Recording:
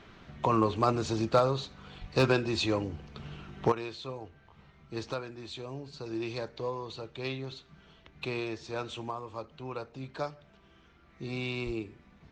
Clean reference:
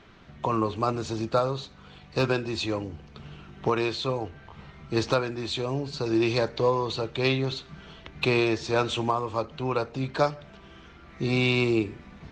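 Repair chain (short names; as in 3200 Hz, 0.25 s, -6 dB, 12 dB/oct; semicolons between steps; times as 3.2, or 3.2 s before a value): clip repair -15 dBFS; 2–2.12 HPF 140 Hz 24 dB/oct; 11.65–11.77 HPF 140 Hz 24 dB/oct; gain 0 dB, from 3.72 s +11.5 dB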